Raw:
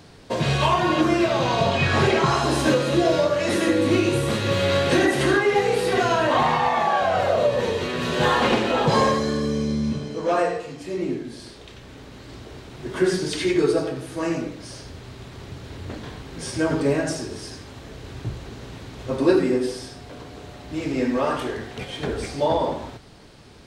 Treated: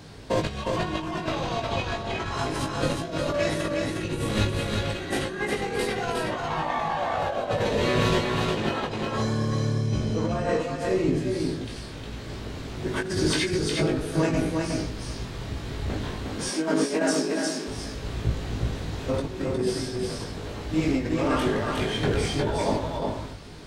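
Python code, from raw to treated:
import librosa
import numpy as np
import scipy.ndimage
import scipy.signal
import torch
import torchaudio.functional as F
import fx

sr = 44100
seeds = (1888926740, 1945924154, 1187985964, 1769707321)

y = fx.octave_divider(x, sr, octaves=1, level_db=-2.0)
y = fx.steep_highpass(y, sr, hz=180.0, slope=48, at=(16.12, 17.68))
y = fx.over_compress(y, sr, threshold_db=-24.0, ratio=-0.5)
y = fx.doubler(y, sr, ms=19.0, db=-4.0)
y = y + 10.0 ** (-3.5 / 20.0) * np.pad(y, (int(360 * sr / 1000.0), 0))[:len(y)]
y = y * librosa.db_to_amplitude(-3.5)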